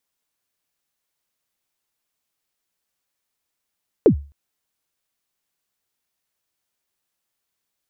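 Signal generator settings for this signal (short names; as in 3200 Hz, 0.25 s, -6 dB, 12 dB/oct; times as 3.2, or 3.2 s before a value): kick drum length 0.26 s, from 510 Hz, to 71 Hz, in 92 ms, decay 0.34 s, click off, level -5 dB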